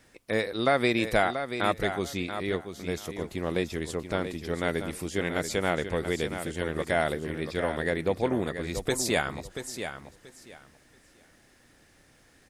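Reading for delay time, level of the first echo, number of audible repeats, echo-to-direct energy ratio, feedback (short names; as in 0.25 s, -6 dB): 0.683 s, -9.0 dB, 2, -9.0 dB, 20%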